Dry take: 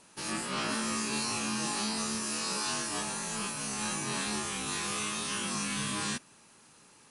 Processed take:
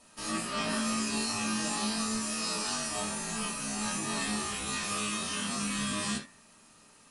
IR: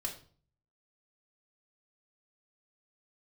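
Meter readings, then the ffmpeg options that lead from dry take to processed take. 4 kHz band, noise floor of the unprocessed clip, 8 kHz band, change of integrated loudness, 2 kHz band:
+0.5 dB, -59 dBFS, 0.0 dB, +0.5 dB, 0.0 dB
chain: -filter_complex "[0:a]bandreject=f=92.58:t=h:w=4,bandreject=f=185.16:t=h:w=4,bandreject=f=277.74:t=h:w=4,bandreject=f=370.32:t=h:w=4,bandreject=f=462.9:t=h:w=4,bandreject=f=555.48:t=h:w=4,bandreject=f=648.06:t=h:w=4,bandreject=f=740.64:t=h:w=4,bandreject=f=833.22:t=h:w=4,bandreject=f=925.8:t=h:w=4,bandreject=f=1018.38:t=h:w=4,bandreject=f=1110.96:t=h:w=4,bandreject=f=1203.54:t=h:w=4,bandreject=f=1296.12:t=h:w=4,bandreject=f=1388.7:t=h:w=4,bandreject=f=1481.28:t=h:w=4,bandreject=f=1573.86:t=h:w=4,bandreject=f=1666.44:t=h:w=4,bandreject=f=1759.02:t=h:w=4,bandreject=f=1851.6:t=h:w=4,bandreject=f=1944.18:t=h:w=4,bandreject=f=2036.76:t=h:w=4,bandreject=f=2129.34:t=h:w=4,bandreject=f=2221.92:t=h:w=4,bandreject=f=2314.5:t=h:w=4,bandreject=f=2407.08:t=h:w=4,bandreject=f=2499.66:t=h:w=4[s0];[1:a]atrim=start_sample=2205,atrim=end_sample=3969[s1];[s0][s1]afir=irnorm=-1:irlink=0"

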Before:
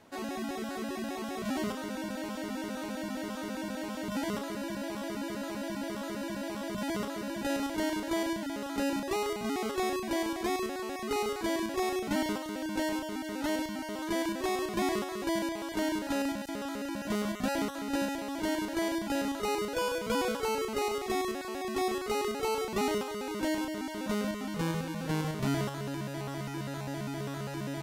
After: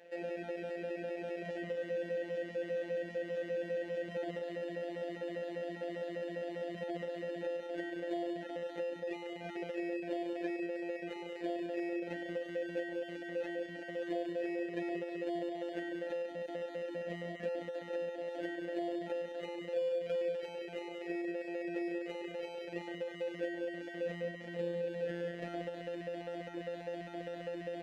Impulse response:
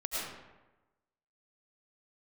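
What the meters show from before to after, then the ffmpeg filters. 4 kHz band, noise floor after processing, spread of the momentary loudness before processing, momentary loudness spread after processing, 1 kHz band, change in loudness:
-13.0 dB, -47 dBFS, 6 LU, 5 LU, -12.5 dB, -6.0 dB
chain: -filter_complex "[0:a]asplit=3[s0][s1][s2];[s0]bandpass=f=530:t=q:w=8,volume=1[s3];[s1]bandpass=f=1840:t=q:w=8,volume=0.501[s4];[s2]bandpass=f=2480:t=q:w=8,volume=0.355[s5];[s3][s4][s5]amix=inputs=3:normalize=0,asplit=2[s6][s7];[s7]alimiter=level_in=3.98:limit=0.0631:level=0:latency=1:release=313,volume=0.251,volume=0.794[s8];[s6][s8]amix=inputs=2:normalize=0,acrossover=split=320|1300[s9][s10][s11];[s9]acompressor=threshold=0.00316:ratio=4[s12];[s10]acompressor=threshold=0.00447:ratio=4[s13];[s11]acompressor=threshold=0.00112:ratio=4[s14];[s12][s13][s14]amix=inputs=3:normalize=0,afftfilt=real='hypot(re,im)*cos(PI*b)':imag='0':win_size=1024:overlap=0.75,volume=3.35"

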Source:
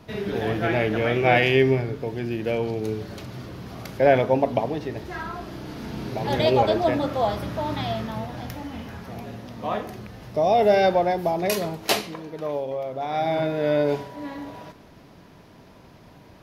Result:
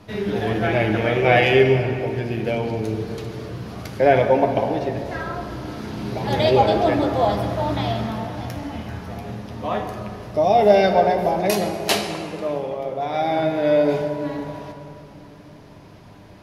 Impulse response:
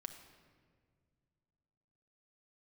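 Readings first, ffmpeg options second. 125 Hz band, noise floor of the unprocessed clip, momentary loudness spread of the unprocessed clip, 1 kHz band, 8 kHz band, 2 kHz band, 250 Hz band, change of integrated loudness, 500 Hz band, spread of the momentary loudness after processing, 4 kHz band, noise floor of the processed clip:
+4.0 dB, -49 dBFS, 18 LU, +3.5 dB, +2.5 dB, +2.5 dB, +3.5 dB, +3.0 dB, +3.5 dB, 17 LU, +2.5 dB, -44 dBFS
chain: -filter_complex "[1:a]atrim=start_sample=2205,asetrate=23373,aresample=44100[s0];[0:a][s0]afir=irnorm=-1:irlink=0,volume=1.41"

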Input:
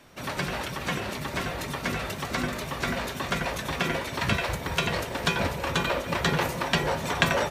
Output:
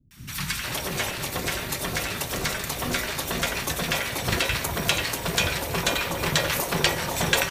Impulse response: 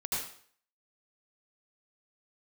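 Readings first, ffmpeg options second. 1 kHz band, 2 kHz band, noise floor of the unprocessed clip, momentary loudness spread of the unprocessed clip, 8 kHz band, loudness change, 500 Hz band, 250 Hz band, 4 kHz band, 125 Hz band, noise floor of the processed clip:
-0.5 dB, +2.0 dB, -37 dBFS, 6 LU, +9.5 dB, +2.5 dB, 0.0 dB, -1.0 dB, +5.0 dB, +0.5 dB, -34 dBFS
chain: -filter_complex "[0:a]tremolo=f=230:d=0.667,crystalizer=i=2:c=0,acrossover=split=220|1100[s0][s1][s2];[s2]adelay=110[s3];[s1]adelay=470[s4];[s0][s4][s3]amix=inputs=3:normalize=0,volume=1.68"

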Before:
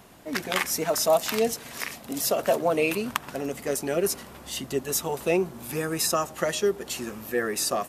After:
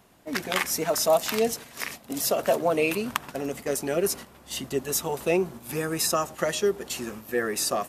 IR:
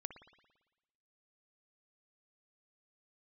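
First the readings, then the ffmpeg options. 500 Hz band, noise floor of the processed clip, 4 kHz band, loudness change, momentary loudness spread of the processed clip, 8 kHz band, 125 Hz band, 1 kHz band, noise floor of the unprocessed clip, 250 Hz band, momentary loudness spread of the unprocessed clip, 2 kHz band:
0.0 dB, -53 dBFS, 0.0 dB, 0.0 dB, 10 LU, 0.0 dB, 0.0 dB, 0.0 dB, -46 dBFS, 0.0 dB, 10 LU, 0.0 dB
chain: -af "agate=range=0.447:threshold=0.0126:ratio=16:detection=peak"

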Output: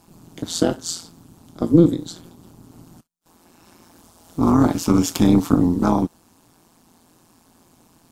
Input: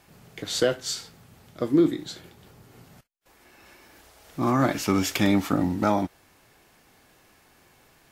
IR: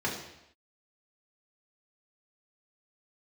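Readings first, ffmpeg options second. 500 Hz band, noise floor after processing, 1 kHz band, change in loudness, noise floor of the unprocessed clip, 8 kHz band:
+3.0 dB, -57 dBFS, +2.5 dB, +6.0 dB, -59 dBFS, +4.5 dB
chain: -af "tremolo=f=170:d=0.974,equalizer=f=125:t=o:w=1:g=3,equalizer=f=250:t=o:w=1:g=10,equalizer=f=500:t=o:w=1:g=-4,equalizer=f=1000:t=o:w=1:g=5,equalizer=f=2000:t=o:w=1:g=-11,equalizer=f=8000:t=o:w=1:g=5,volume=1.78"

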